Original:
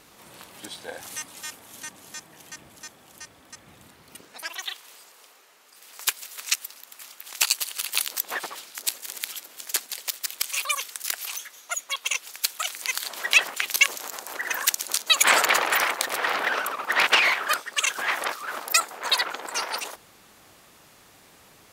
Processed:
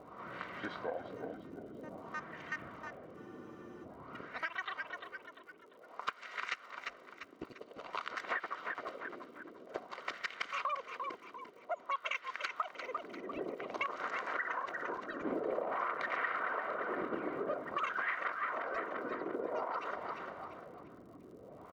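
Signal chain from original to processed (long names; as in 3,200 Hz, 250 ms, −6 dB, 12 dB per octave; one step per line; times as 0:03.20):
soft clipping −7.5 dBFS, distortion −20 dB
auto-filter low-pass sine 0.51 Hz 300–1,800 Hz
high shelf with overshoot 7,800 Hz −7 dB, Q 1.5
on a send: echo with shifted repeats 346 ms, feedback 41%, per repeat −53 Hz, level −11 dB
on the sum: downward compressor 6 to 1, threshold −35 dBFS, peak gain reduction 18.5 dB
surface crackle 86 per second −58 dBFS
notch comb filter 850 Hz
frozen spectrum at 0:03.18, 0.67 s
level +2 dB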